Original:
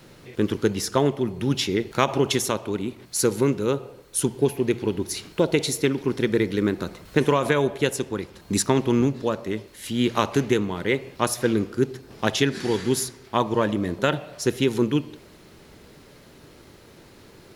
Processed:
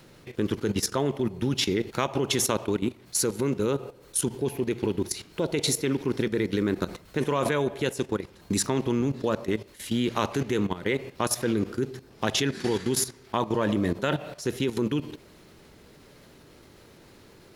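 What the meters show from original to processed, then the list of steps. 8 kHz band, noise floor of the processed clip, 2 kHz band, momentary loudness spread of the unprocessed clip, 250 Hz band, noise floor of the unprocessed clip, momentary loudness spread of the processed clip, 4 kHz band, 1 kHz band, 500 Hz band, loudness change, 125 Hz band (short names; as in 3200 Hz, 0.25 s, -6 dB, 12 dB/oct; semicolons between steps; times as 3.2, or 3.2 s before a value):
-0.5 dB, -53 dBFS, -4.5 dB, 7 LU, -3.5 dB, -50 dBFS, 6 LU, -2.0 dB, -4.5 dB, -4.5 dB, -3.5 dB, -3.5 dB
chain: level quantiser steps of 14 dB; gain +3.5 dB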